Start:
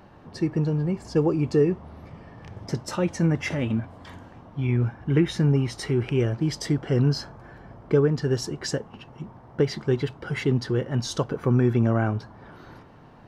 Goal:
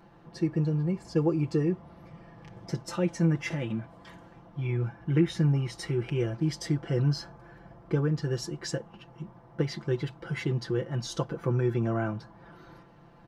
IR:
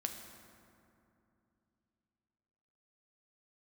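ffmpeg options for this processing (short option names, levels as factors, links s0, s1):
-af "aecho=1:1:5.9:0.74,volume=0.447"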